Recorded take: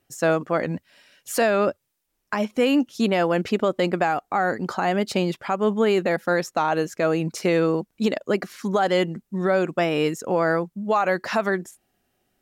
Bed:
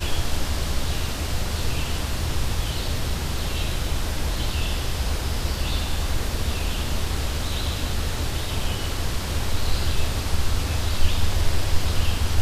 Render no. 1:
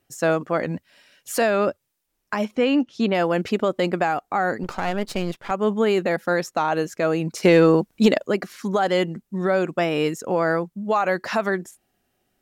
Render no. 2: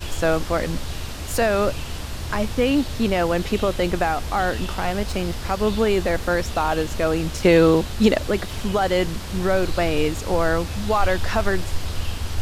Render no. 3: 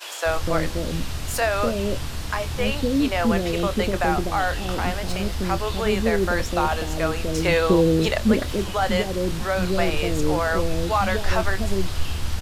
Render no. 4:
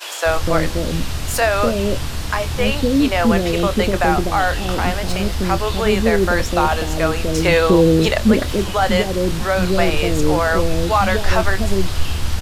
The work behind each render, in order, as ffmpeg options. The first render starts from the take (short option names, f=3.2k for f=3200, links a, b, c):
-filter_complex "[0:a]asettb=1/sr,asplit=3[a][b][c];[a]atrim=end=2.554[d];[b]atrim=start=2.55:end=3.15,asetpts=PTS-STARTPTS,afade=t=in:d=0.004:c=qsin,afade=t=out:st=0.596:d=0.004:c=qsin,lowpass=4.5k[e];[c]atrim=start=3.146[f];[d][e]acrossfade=d=0.004:c1=hsin:c2=qsin[g];[g][f]acrossfade=d=0.004:c1=qsin:c2=hsin,asettb=1/sr,asplit=3[h][i][j];[h]atrim=end=4.634[k];[i]atrim=start=4.63:end=5.51,asetpts=PTS-STARTPTS,afade=t=in:d=0.004:c=qsin,afade=t=out:st=0.876:d=0.004:c=qsin,aeval=exprs='if(lt(val(0),0),0.251*val(0),val(0))':c=same[l];[j]atrim=start=5.506[m];[k][l]acrossfade=d=0.004:c1=hsin:c2=qsin[n];[n][m]acrossfade=d=0.004:c1=qsin:c2=hsin,asettb=1/sr,asplit=3[o][p][q];[o]atrim=end=7.434[r];[p]atrim=start=7.43:end=8.27,asetpts=PTS-STARTPTS,afade=t=in:d=0.004:c=qsin,afade=t=out:st=0.836:d=0.004:c=qsin,acontrast=67[s];[q]atrim=start=8.266[t];[r][s]acrossfade=d=0.004:c1=hsin:c2=qsin[u];[u][t]acrossfade=d=0.004:c1=qsin:c2=hsin"
-filter_complex "[1:a]volume=-4.5dB[a];[0:a][a]amix=inputs=2:normalize=0"
-filter_complex "[0:a]asplit=2[a][b];[b]adelay=26,volume=-12.5dB[c];[a][c]amix=inputs=2:normalize=0,acrossover=split=500[d][e];[d]adelay=250[f];[f][e]amix=inputs=2:normalize=0"
-af "volume=5.5dB,alimiter=limit=-3dB:level=0:latency=1"